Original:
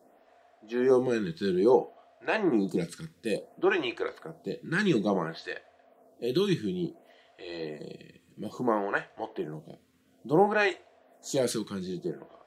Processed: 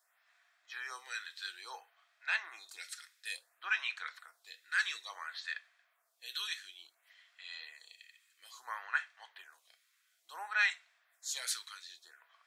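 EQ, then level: high-pass 1.4 kHz 24 dB/octave; band-stop 2.9 kHz, Q 13; 0.0 dB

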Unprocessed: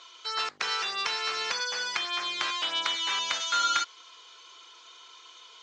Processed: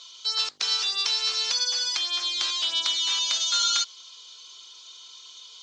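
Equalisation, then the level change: resonant high shelf 2.8 kHz +11.5 dB, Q 1.5; -5.0 dB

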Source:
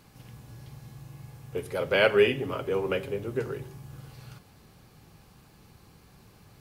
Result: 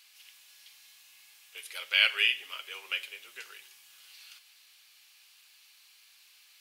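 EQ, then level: resonant high-pass 2.8 kHz, resonance Q 1.6; +3.0 dB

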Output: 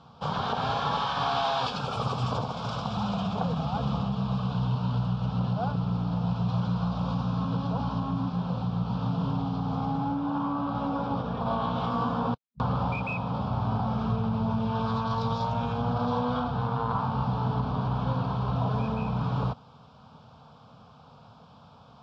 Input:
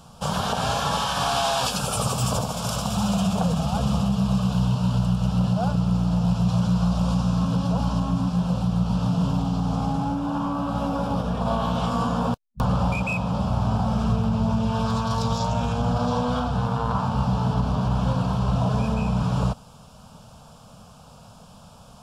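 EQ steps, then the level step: cabinet simulation 110–3900 Hz, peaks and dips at 190 Hz -7 dB, 600 Hz -6 dB, 1.7 kHz -4 dB, 2.8 kHz -7 dB; -1.5 dB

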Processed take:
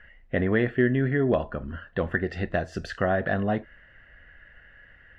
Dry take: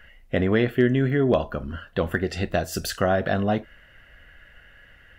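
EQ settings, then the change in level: low-pass 2.3 kHz 6 dB/octave; distance through air 76 m; peaking EQ 1.8 kHz +8 dB 0.29 oct; -2.5 dB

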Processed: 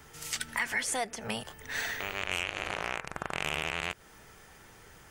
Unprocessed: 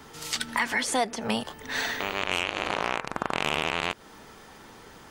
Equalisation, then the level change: graphic EQ 250/500/1000/4000 Hz -11/-4/-8/-8 dB; 0.0 dB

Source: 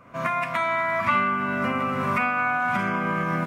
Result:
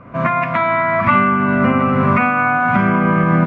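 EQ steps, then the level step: low-pass 2.5 kHz 12 dB/octave; bass shelf 390 Hz +8 dB; +7.5 dB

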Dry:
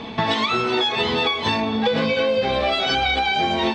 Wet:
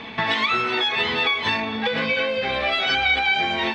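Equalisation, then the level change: peaking EQ 2 kHz +11.5 dB 1.5 oct; -6.5 dB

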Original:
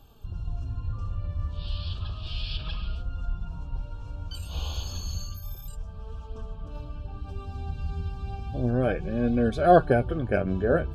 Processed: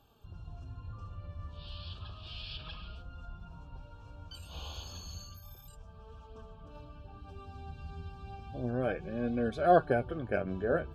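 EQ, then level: high-pass 80 Hz 6 dB/octave; bass shelf 460 Hz -5 dB; treble shelf 3.9 kHz -6 dB; -4.0 dB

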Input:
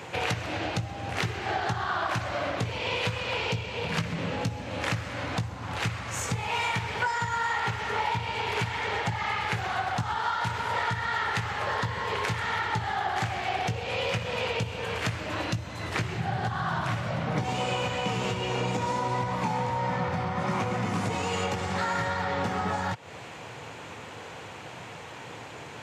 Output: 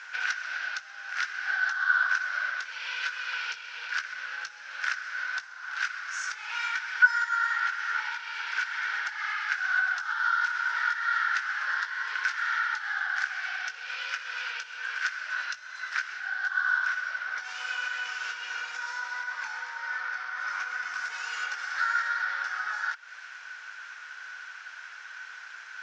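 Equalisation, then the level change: resonant high-pass 1.5 kHz, resonance Q 15; four-pole ladder low-pass 6.1 kHz, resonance 65%; +1.0 dB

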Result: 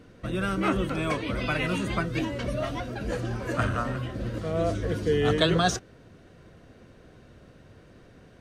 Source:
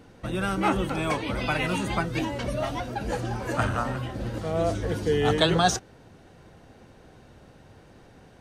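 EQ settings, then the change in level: peaking EQ 840 Hz -14 dB 0.23 oct; treble shelf 5 kHz -5.5 dB; 0.0 dB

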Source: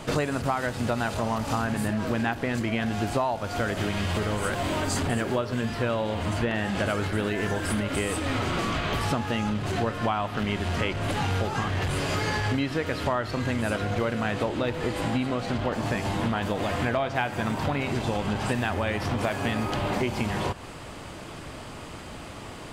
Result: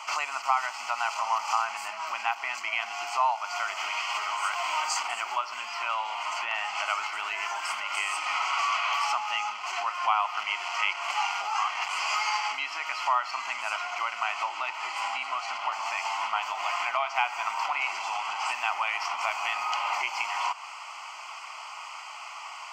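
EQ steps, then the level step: high-pass 820 Hz 24 dB/octave; treble shelf 9.4 kHz -12 dB; static phaser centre 2.5 kHz, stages 8; +7.0 dB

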